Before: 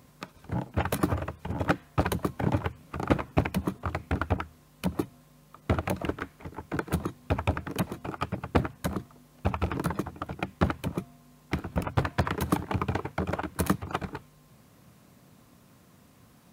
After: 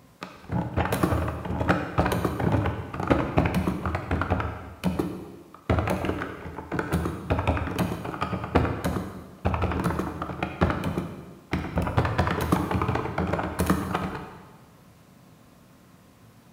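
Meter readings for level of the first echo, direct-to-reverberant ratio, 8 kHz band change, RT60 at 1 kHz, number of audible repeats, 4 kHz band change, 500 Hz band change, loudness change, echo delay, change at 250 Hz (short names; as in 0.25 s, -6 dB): none, 4.0 dB, +1.0 dB, 1.3 s, none, +3.0 dB, +4.5 dB, +4.0 dB, none, +3.5 dB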